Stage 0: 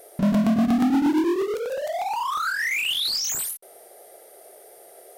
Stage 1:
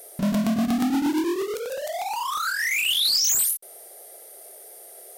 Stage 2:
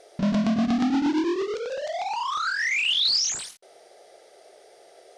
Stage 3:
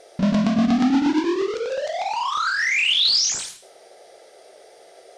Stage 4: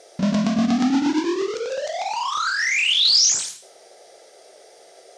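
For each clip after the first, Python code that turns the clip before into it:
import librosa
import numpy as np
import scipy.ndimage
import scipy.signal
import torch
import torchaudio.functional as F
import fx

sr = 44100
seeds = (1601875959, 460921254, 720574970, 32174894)

y1 = fx.high_shelf(x, sr, hz=3200.0, db=10.5)
y1 = y1 * librosa.db_to_amplitude(-3.0)
y2 = scipy.signal.sosfilt(scipy.signal.butter(4, 5800.0, 'lowpass', fs=sr, output='sos'), y1)
y3 = fx.rev_gated(y2, sr, seeds[0], gate_ms=240, shape='falling', drr_db=8.0)
y3 = y3 * librosa.db_to_amplitude(3.5)
y4 = scipy.signal.sosfilt(scipy.signal.butter(2, 82.0, 'highpass', fs=sr, output='sos'), y3)
y4 = fx.peak_eq(y4, sr, hz=6500.0, db=6.5, octaves=1.0)
y4 = y4 * librosa.db_to_amplitude(-1.0)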